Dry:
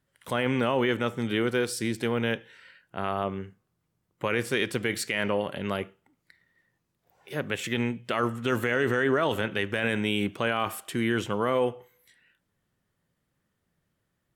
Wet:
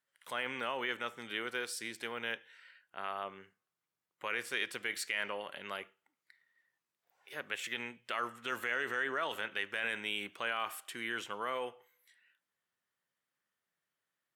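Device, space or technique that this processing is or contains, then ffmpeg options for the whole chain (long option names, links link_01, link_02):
filter by subtraction: -filter_complex "[0:a]asplit=2[link_01][link_02];[link_02]lowpass=1600,volume=-1[link_03];[link_01][link_03]amix=inputs=2:normalize=0,volume=-7.5dB"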